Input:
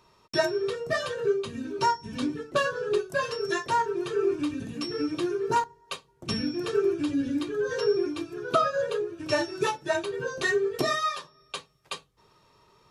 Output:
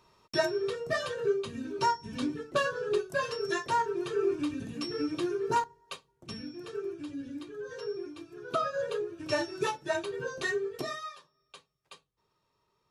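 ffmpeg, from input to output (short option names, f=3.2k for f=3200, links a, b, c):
-af "volume=5dB,afade=t=out:st=5.57:d=0.77:silence=0.354813,afade=t=in:st=8.21:d=0.72:silence=0.398107,afade=t=out:st=10.27:d=0.89:silence=0.266073"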